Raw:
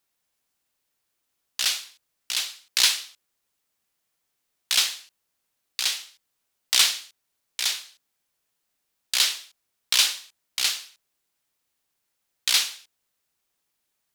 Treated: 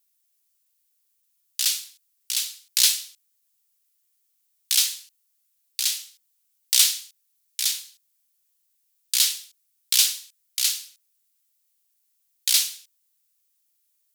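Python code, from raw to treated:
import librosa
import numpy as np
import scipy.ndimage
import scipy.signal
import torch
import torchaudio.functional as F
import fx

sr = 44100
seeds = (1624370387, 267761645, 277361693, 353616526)

y = np.diff(x, prepend=0.0)
y = y * librosa.db_to_amplitude(4.0)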